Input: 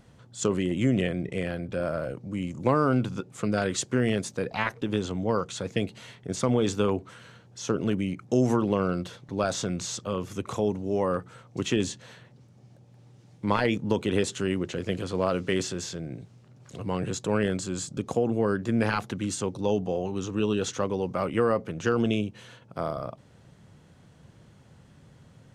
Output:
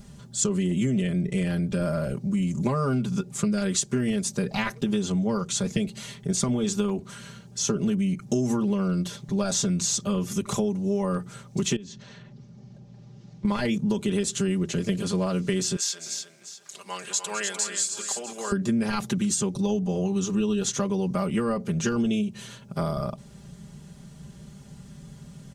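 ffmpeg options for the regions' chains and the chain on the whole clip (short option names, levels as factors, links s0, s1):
-filter_complex "[0:a]asettb=1/sr,asplit=3[s0][s1][s2];[s0]atrim=end=11.764[s3];[s1]atrim=start=11.76:end=13.45,asetpts=PTS-STARTPTS,afade=t=in:d=0.004:c=qsin,afade=t=out:st=1.686:d=0.004:c=qsin,lowpass=f=6200:w=0.5412,lowpass=f=6200:w=1.3066,highshelf=f=4000:g=-7,acompressor=threshold=0.00355:ratio=2.5:attack=3.2:release=140:knee=1:detection=peak[s4];[s2]atrim=start=13.446[s5];[s3][s4]acrossfade=d=0.004:c1=hsin:c2=qsin[s6];[s6][s5]acrossfade=d=0.004:c1=qsin:c2=hsin,asettb=1/sr,asplit=3[s7][s8][s9];[s7]atrim=end=15.764[s10];[s8]atrim=start=15.76:end=18.52,asetpts=PTS-STARTPTS,afade=t=in:d=0.004:c=qsin,afade=t=out:st=2.756:d=0.004:c=qsin,highpass=1000,aecho=1:1:209|299|649:0.224|0.447|0.15,atrim=end_sample=121716[s11];[s9]atrim=start=18.516[s12];[s10][s11]acrossfade=d=0.004:c1=hsin:c2=qsin[s13];[s13][s12]acrossfade=d=0.004:c1=qsin:c2=hsin,bass=f=250:g=10,treble=f=4000:g=11,aecho=1:1:5:0.95,acompressor=threshold=0.0794:ratio=6"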